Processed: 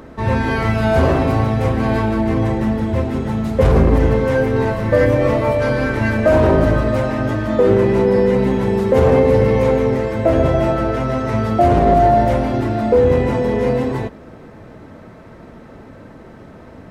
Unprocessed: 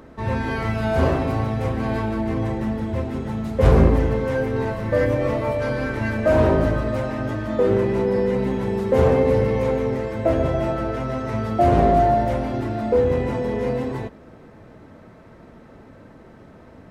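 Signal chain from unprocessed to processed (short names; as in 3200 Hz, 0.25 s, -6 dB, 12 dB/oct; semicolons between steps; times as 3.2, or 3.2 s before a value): limiter -10.5 dBFS, peak gain reduction 7 dB; gain +6.5 dB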